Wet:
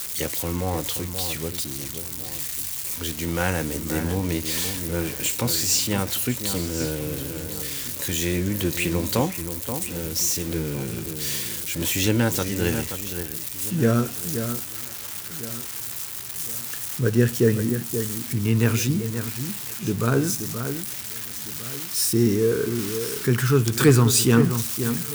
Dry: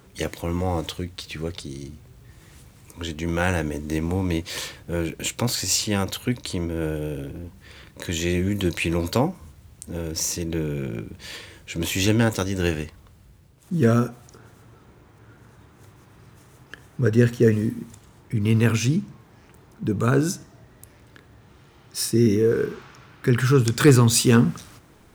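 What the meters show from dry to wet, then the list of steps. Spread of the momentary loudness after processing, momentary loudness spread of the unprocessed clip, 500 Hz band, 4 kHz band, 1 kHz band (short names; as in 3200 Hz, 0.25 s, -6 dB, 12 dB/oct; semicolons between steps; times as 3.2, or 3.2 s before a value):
10 LU, 17 LU, -1.0 dB, +2.0 dB, -0.5 dB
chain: switching spikes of -19.5 dBFS; echo with dull and thin repeats by turns 0.528 s, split 2200 Hz, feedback 60%, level -8.5 dB; gain -1.5 dB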